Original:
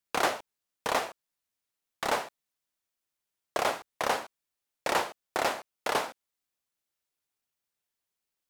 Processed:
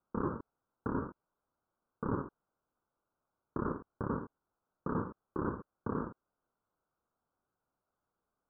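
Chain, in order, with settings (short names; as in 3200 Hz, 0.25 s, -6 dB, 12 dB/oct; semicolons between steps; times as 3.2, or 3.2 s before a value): FFT order left unsorted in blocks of 64 samples; steep low-pass 1500 Hz 96 dB/oct; limiter -34 dBFS, peak gain reduction 10.5 dB; gain +10 dB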